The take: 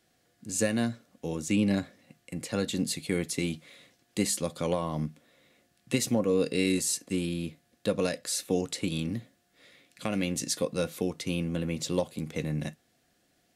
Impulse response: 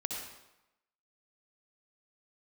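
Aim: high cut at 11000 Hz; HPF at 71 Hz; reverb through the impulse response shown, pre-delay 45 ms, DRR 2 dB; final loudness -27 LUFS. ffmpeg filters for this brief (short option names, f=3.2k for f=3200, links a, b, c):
-filter_complex "[0:a]highpass=71,lowpass=11k,asplit=2[a][b];[1:a]atrim=start_sample=2205,adelay=45[c];[b][c]afir=irnorm=-1:irlink=0,volume=-4.5dB[d];[a][d]amix=inputs=2:normalize=0,volume=1.5dB"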